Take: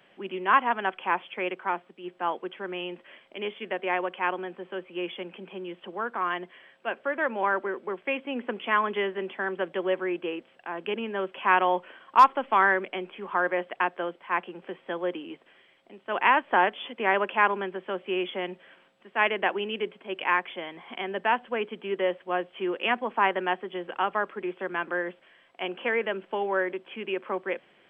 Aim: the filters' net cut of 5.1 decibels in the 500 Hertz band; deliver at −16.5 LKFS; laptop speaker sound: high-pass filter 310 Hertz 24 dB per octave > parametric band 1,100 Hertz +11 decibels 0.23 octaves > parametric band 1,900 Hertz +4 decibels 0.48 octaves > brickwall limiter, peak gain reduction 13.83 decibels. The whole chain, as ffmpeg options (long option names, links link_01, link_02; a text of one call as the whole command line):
ffmpeg -i in.wav -af "highpass=frequency=310:width=0.5412,highpass=frequency=310:width=1.3066,equalizer=frequency=500:width_type=o:gain=-6.5,equalizer=frequency=1100:width_type=o:width=0.23:gain=11,equalizer=frequency=1900:width_type=o:width=0.48:gain=4,volume=12.5dB,alimiter=limit=-1.5dB:level=0:latency=1" out.wav